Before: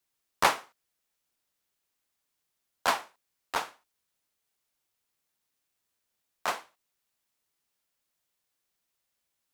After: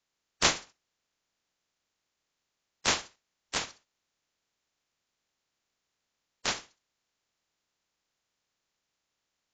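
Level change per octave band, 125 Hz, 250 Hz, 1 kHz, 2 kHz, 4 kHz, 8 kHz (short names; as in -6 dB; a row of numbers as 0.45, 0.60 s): +6.5, +3.5, -7.0, -1.0, +5.5, +8.0 dB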